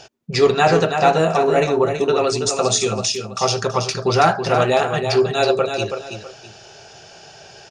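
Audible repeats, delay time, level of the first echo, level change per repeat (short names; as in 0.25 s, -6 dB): 2, 0.327 s, -7.0 dB, -11.0 dB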